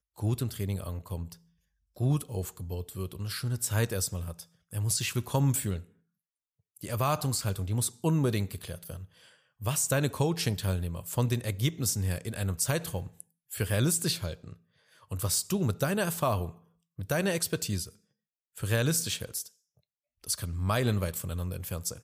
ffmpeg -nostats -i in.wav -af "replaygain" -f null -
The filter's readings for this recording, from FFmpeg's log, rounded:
track_gain = +11.9 dB
track_peak = 0.133